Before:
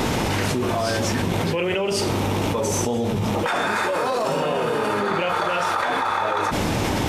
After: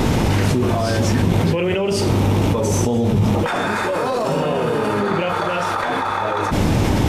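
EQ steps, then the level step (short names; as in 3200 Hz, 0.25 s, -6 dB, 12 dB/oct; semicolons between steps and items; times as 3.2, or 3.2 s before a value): low shelf 140 Hz +3.5 dB; low shelf 380 Hz +7 dB; 0.0 dB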